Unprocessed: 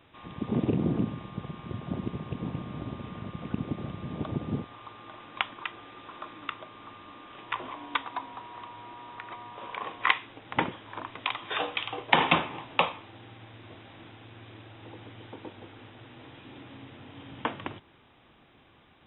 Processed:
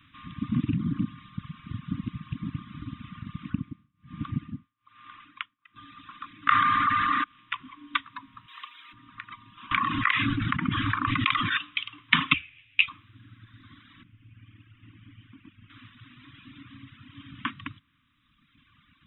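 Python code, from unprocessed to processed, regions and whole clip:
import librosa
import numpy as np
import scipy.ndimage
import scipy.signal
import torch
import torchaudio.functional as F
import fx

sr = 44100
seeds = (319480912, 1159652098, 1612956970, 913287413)

y = fx.chain(x, sr, fx.lowpass(hz=3400.0, slope=12),
    fx.tremolo(hz=1.2, depth=0.97), at=(3.5, 5.76))
y = fx.chain(y, sr, fx.band_shelf(hz=1500.0, db=11.5, octaves=1.1),
    fx.env_flatten(amount_pct=100), at=(6.47, 7.24))
y = fx.chain(y, sr, fx.highpass(hz=450.0, slope=12),
    fx.high_shelf(hz=2000.0, db=10.0), at=(8.48, 8.93))
y = fx.chain(y, sr, fx.lowpass(hz=1300.0, slope=6),
    fx.notch(hz=1000.0, q=12.0),
    fx.env_flatten(amount_pct=100), at=(9.71, 11.57))
y = fx.chain(y, sr, fx.curve_eq(hz=(110.0, 200.0, 550.0, 960.0, 2500.0, 6000.0), db=(0, -21, -5, -27, 9, -17)),
    fx.ensemble(), at=(12.33, 12.88))
y = fx.chain(y, sr, fx.steep_lowpass(hz=3100.0, slope=48),
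    fx.peak_eq(hz=980.0, db=-10.5, octaves=2.8), at=(14.03, 15.7))
y = scipy.signal.sosfilt(scipy.signal.cheby1(4, 1.0, [290.0, 1100.0], 'bandstop', fs=sr, output='sos'), y)
y = fx.dereverb_blind(y, sr, rt60_s=1.9)
y = y * 10.0 ** (3.5 / 20.0)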